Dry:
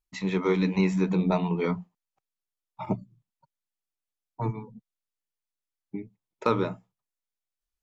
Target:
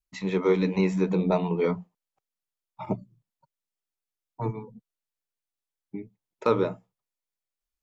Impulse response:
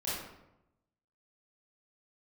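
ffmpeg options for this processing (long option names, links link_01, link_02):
-af "adynamicequalizer=threshold=0.00891:dfrequency=500:dqfactor=1.6:tfrequency=500:tqfactor=1.6:attack=5:release=100:ratio=0.375:range=3.5:mode=boostabove:tftype=bell,volume=-1.5dB"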